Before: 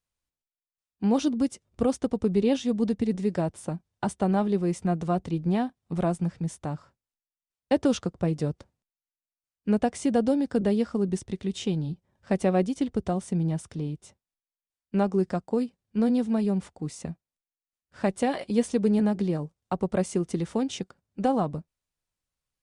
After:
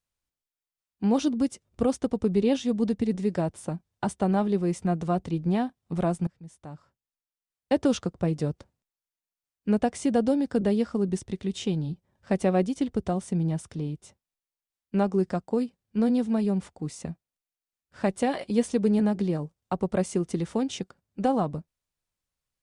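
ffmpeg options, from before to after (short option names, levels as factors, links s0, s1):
-filter_complex "[0:a]asplit=2[s0][s1];[s0]atrim=end=6.27,asetpts=PTS-STARTPTS,afade=t=out:st=6.266:d=0.004:c=hsin:silence=0.0841395[s2];[s1]atrim=start=6.27,asetpts=PTS-STARTPTS,afade=t=in:d=1.57:silence=0.0841395[s3];[s2][s3]concat=n=2:v=0:a=1"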